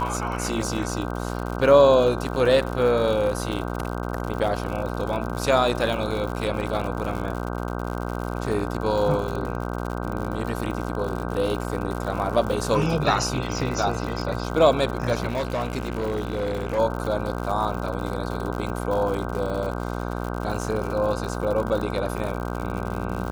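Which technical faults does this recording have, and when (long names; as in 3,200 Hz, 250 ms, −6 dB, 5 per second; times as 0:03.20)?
mains buzz 60 Hz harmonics 26 −29 dBFS
surface crackle 96 per second −29 dBFS
0:15.28–0:16.79: clipping −21.5 dBFS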